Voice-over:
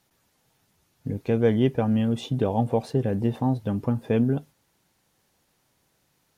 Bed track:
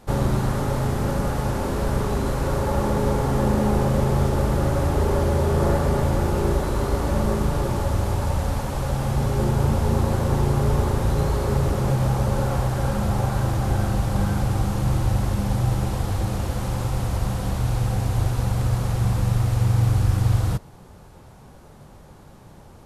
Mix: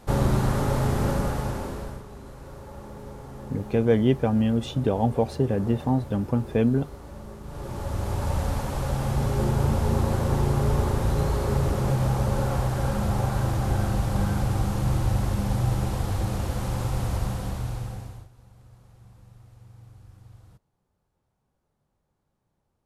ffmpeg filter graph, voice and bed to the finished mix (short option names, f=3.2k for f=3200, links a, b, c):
-filter_complex "[0:a]adelay=2450,volume=0.5dB[a];[1:a]volume=16dB,afade=t=out:st=1.05:d=0.98:silence=0.11885,afade=t=in:st=7.43:d=0.93:silence=0.149624,afade=t=out:st=17.13:d=1.15:silence=0.0421697[b];[a][b]amix=inputs=2:normalize=0"